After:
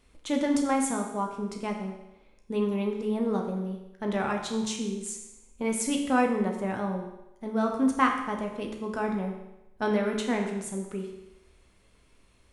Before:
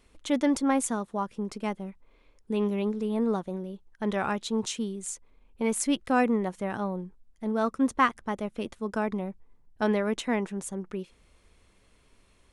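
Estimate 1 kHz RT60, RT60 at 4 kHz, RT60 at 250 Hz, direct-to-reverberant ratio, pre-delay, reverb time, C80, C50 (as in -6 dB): 0.95 s, 0.90 s, 0.90 s, 1.5 dB, 11 ms, 0.95 s, 7.5 dB, 5.5 dB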